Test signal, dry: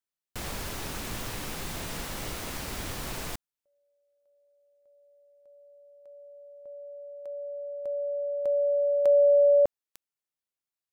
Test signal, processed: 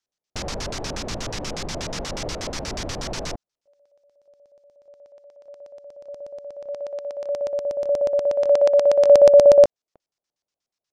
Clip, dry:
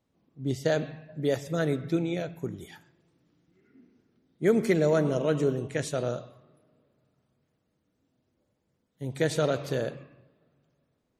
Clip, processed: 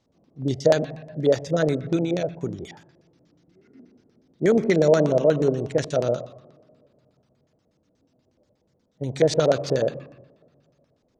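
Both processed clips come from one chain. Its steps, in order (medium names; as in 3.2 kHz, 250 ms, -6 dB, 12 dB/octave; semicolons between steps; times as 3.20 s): in parallel at -3 dB: compression, threshold -35 dBFS; on the sum: LFO low-pass square 8.3 Hz 620–5700 Hz; trim +2 dB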